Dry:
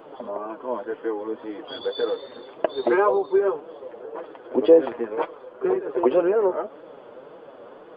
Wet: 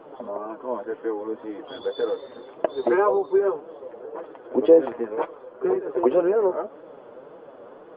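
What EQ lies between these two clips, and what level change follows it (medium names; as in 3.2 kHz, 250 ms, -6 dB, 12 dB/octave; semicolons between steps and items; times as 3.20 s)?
low-pass 1.8 kHz 6 dB/octave; 0.0 dB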